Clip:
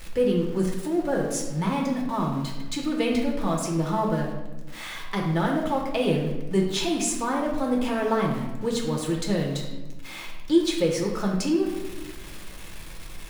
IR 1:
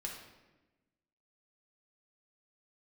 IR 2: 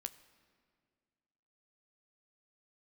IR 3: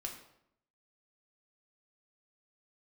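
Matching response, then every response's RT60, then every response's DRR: 1; 1.1, 2.0, 0.75 s; -1.5, 10.0, 0.5 dB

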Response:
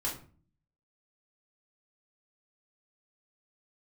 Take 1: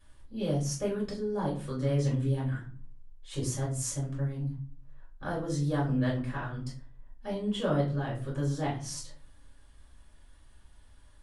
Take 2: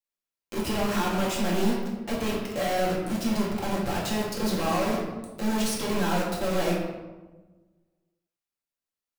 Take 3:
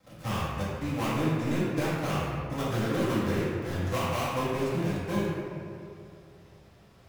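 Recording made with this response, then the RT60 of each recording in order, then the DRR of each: 1; 0.40, 1.2, 2.6 s; -5.5, -4.5, -10.5 dB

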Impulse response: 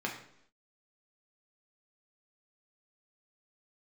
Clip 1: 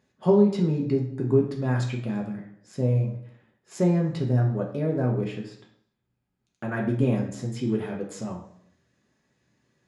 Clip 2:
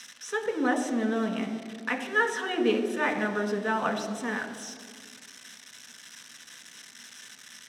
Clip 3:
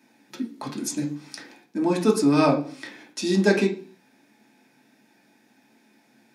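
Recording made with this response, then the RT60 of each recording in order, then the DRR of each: 1; 0.70, 1.9, 0.45 s; -1.0, 3.5, -0.5 dB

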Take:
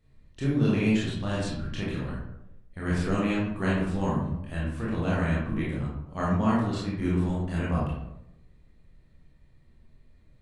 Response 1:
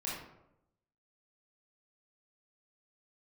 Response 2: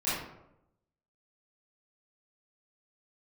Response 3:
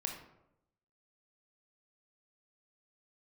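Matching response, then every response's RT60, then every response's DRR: 1; 0.85, 0.85, 0.85 s; -7.0, -14.0, 2.0 dB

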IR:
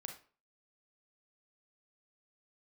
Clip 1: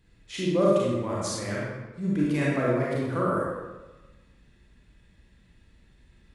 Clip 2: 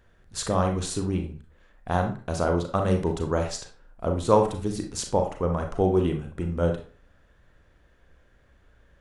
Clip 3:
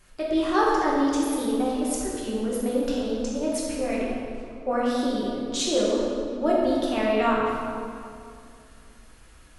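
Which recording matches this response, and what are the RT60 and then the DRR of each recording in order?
2; 1.2, 0.40, 2.4 s; -6.0, 3.5, -5.5 dB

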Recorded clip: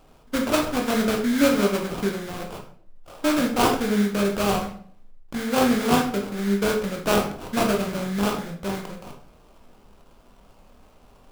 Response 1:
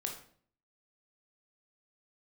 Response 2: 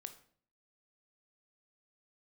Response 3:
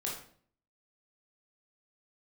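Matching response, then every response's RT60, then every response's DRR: 1; 0.55, 0.55, 0.55 s; 1.5, 8.0, -3.5 dB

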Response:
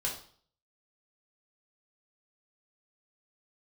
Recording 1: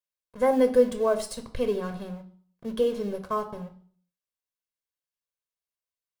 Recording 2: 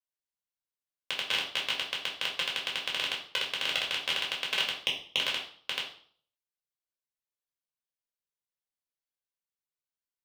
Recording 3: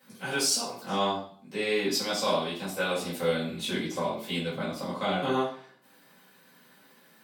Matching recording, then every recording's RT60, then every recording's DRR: 2; 0.50, 0.50, 0.50 s; 6.5, -2.5, -10.0 dB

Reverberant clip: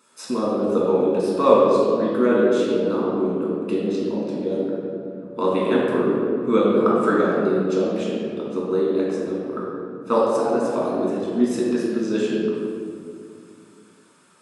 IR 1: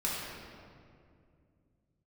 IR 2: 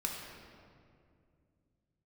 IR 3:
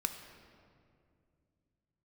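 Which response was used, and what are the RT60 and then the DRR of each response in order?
1; 2.3, 2.3, 2.3 s; -6.0, -1.0, 6.0 dB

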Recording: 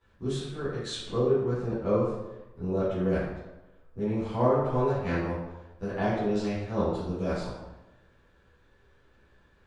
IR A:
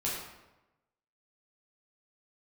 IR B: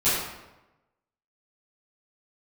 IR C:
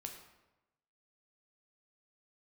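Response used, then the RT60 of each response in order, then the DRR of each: B; 1.0, 1.0, 1.0 s; -6.5, -15.5, 3.0 dB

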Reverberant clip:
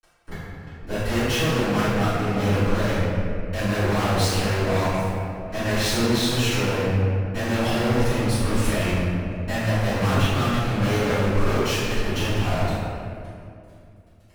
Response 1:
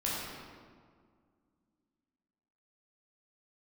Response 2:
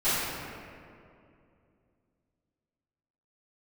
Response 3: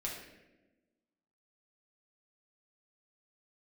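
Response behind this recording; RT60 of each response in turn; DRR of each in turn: 2; 1.9, 2.5, 1.1 s; -7.0, -19.0, -4.0 dB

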